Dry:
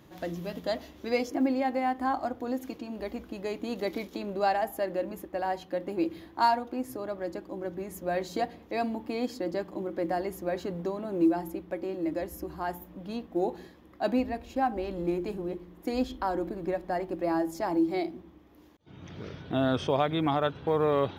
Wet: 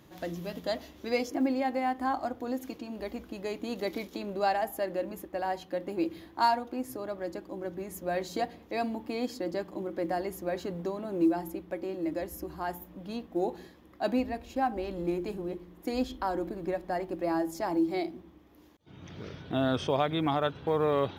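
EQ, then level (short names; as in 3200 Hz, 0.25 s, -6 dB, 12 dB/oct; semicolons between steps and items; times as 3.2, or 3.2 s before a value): bell 12000 Hz +3 dB 2.7 oct; -1.5 dB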